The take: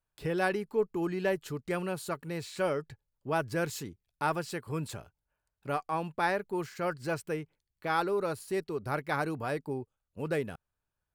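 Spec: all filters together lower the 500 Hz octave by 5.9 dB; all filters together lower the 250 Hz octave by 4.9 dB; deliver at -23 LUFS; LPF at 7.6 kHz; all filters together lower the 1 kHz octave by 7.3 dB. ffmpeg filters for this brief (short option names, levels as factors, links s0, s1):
-af "lowpass=7600,equalizer=f=250:t=o:g=-6,equalizer=f=500:t=o:g=-3.5,equalizer=f=1000:t=o:g=-8.5,volume=5.96"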